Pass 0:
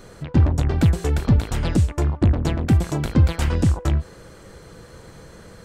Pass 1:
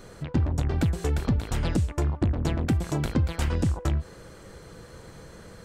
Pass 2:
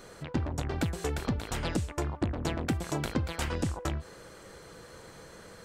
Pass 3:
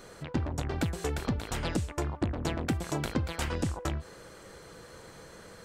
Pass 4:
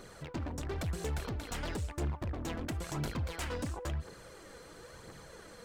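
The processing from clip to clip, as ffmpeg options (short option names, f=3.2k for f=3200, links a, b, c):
-af "acompressor=threshold=-18dB:ratio=6,volume=-2.5dB"
-af "lowshelf=f=240:g=-10"
-af anull
-af "asoftclip=type=hard:threshold=-30.5dB,aphaser=in_gain=1:out_gain=1:delay=4.3:decay=0.42:speed=0.98:type=triangular,volume=-3dB"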